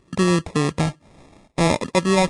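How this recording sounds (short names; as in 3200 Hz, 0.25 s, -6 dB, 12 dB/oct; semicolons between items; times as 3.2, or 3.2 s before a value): aliases and images of a low sample rate 1500 Hz, jitter 0%; Vorbis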